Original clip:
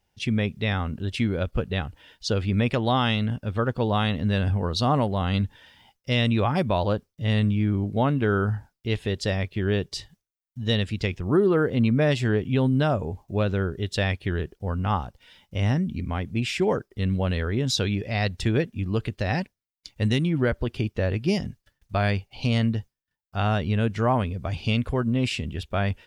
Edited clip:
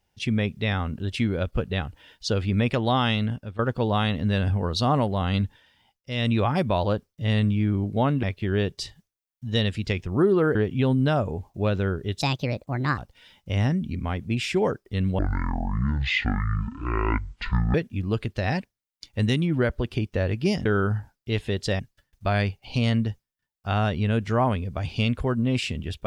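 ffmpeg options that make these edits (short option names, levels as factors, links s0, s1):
-filter_complex "[0:a]asplit=12[s0][s1][s2][s3][s4][s5][s6][s7][s8][s9][s10][s11];[s0]atrim=end=3.59,asetpts=PTS-STARTPTS,afade=t=out:st=3.26:d=0.33:silence=0.199526[s12];[s1]atrim=start=3.59:end=5.63,asetpts=PTS-STARTPTS,afade=t=in:d=0.004:c=hsin:silence=0.199526,afade=t=out:st=1.86:d=0.18:silence=0.398107[s13];[s2]atrim=start=5.63:end=6.12,asetpts=PTS-STARTPTS,volume=0.398[s14];[s3]atrim=start=6.12:end=8.232,asetpts=PTS-STARTPTS,afade=t=in:d=0.18:silence=0.398107[s15];[s4]atrim=start=9.368:end=11.692[s16];[s5]atrim=start=12.288:end=13.954[s17];[s6]atrim=start=13.95:end=15.03,asetpts=PTS-STARTPTS,asetrate=62181,aresample=44100[s18];[s7]atrim=start=15.026:end=17.244[s19];[s8]atrim=start=17.24:end=18.57,asetpts=PTS-STARTPTS,asetrate=22932,aresample=44100,atrim=end_sample=112794,asetpts=PTS-STARTPTS[s20];[s9]atrim=start=18.566:end=21.482[s21];[s10]atrim=start=8.228:end=9.372[s22];[s11]atrim=start=21.478[s23];[s12][s13][s14][s15]concat=n=4:v=0:a=1[s24];[s24][s16]acrossfade=d=0.004:c1=hsin:c2=hsin[s25];[s25][s17]acrossfade=d=0.004:c1=hsin:c2=hsin[s26];[s26][s18]acrossfade=d=0.004:c1=hsin:c2=hsin[s27];[s27][s19]acrossfade=d=0.004:c1=hsin:c2=hsin[s28];[s28][s20]acrossfade=d=0.004:c1=hsin:c2=hsin[s29];[s29][s21]acrossfade=d=0.004:c1=hsin:c2=hsin[s30];[s30][s22]acrossfade=d=0.004:c1=hsin:c2=hsin[s31];[s31][s23]acrossfade=d=0.004:c1=hsin:c2=hsin"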